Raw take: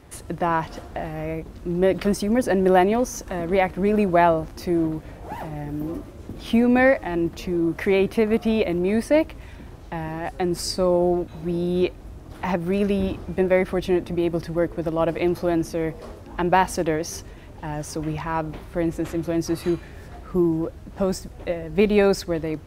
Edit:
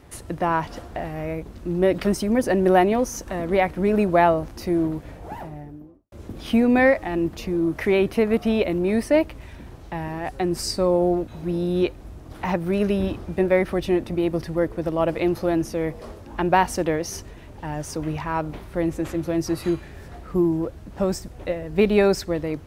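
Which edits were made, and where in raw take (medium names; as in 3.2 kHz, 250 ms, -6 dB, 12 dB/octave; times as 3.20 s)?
5.10–6.12 s: studio fade out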